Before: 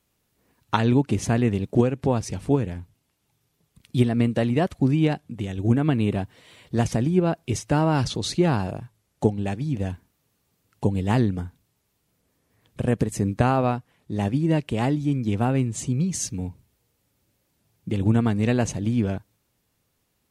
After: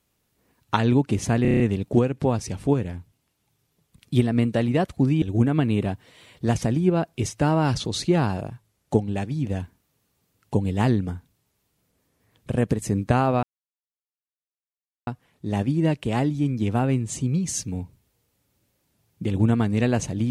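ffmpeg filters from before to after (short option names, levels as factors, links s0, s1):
-filter_complex "[0:a]asplit=9[s0][s1][s2][s3][s4][s5][s6][s7][s8];[s0]atrim=end=1.452[s9];[s1]atrim=start=1.418:end=1.452[s10];[s2]atrim=start=1.418:end=1.452[s11];[s3]atrim=start=1.418:end=1.452[s12];[s4]atrim=start=1.418:end=1.452[s13];[s5]atrim=start=1.418:end=1.452[s14];[s6]atrim=start=1.418:end=5.042[s15];[s7]atrim=start=5.518:end=13.73,asetpts=PTS-STARTPTS,afade=t=out:st=8.208:d=0.004:c=hsin,apad=pad_dur=1.64[s16];[s8]atrim=start=13.73,asetpts=PTS-STARTPTS,afade=t=in:d=0.004:c=hsin[s17];[s9][s10]acrossfade=d=0.004:c1=hsin:c2=hsin[s18];[s18][s11]acrossfade=d=0.004:c1=hsin:c2=hsin[s19];[s19][s12]acrossfade=d=0.004:c1=hsin:c2=hsin[s20];[s20][s13]acrossfade=d=0.004:c1=hsin:c2=hsin[s21];[s21][s14]acrossfade=d=0.004:c1=hsin:c2=hsin[s22];[s22][s15]acrossfade=d=0.004:c1=hsin:c2=hsin[s23];[s16][s17]concat=n=2:v=0:a=1[s24];[s23][s24]acrossfade=d=0.004:c1=hsin:c2=hsin"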